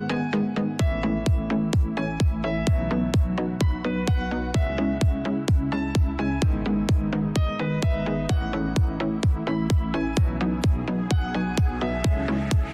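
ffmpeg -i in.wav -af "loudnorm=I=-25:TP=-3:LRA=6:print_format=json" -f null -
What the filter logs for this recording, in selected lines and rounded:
"input_i" : "-24.6",
"input_tp" : "-9.5",
"input_lra" : "0.5",
"input_thresh" : "-34.6",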